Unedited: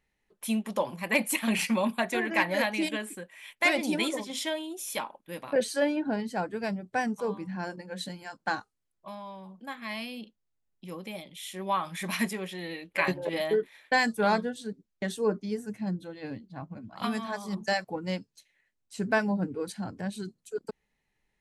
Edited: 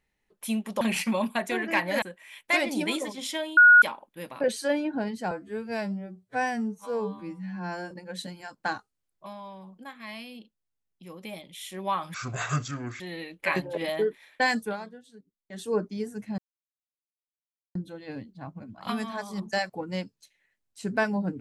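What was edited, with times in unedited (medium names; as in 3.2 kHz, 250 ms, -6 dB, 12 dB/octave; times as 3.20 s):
0.81–1.44 s: delete
2.65–3.14 s: delete
4.69–4.94 s: bleep 1.45 kHz -10.5 dBFS
6.43–7.73 s: stretch 2×
9.66–11.05 s: gain -4 dB
11.96–12.52 s: speed 65%
14.14–15.18 s: dip -14.5 dB, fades 0.15 s
15.90 s: insert silence 1.37 s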